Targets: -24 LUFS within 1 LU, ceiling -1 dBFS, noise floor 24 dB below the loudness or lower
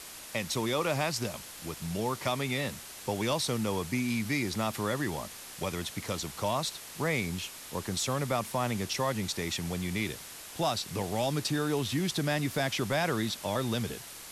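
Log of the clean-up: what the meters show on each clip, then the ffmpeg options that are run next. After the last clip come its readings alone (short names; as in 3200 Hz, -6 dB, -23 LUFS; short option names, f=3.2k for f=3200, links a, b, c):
noise floor -46 dBFS; noise floor target -56 dBFS; loudness -32.0 LUFS; peak -18.5 dBFS; loudness target -24.0 LUFS
-> -af "afftdn=nr=10:nf=-46"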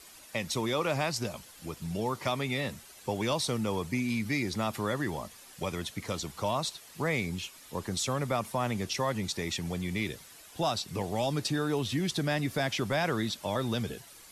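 noise floor -52 dBFS; noise floor target -56 dBFS
-> -af "afftdn=nr=6:nf=-52"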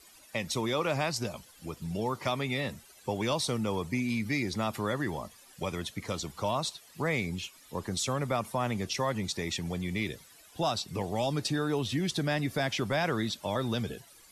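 noise floor -57 dBFS; loudness -32.0 LUFS; peak -19.0 dBFS; loudness target -24.0 LUFS
-> -af "volume=8dB"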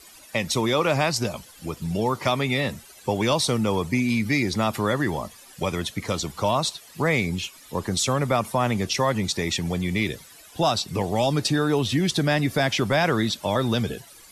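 loudness -24.0 LUFS; peak -11.0 dBFS; noise floor -49 dBFS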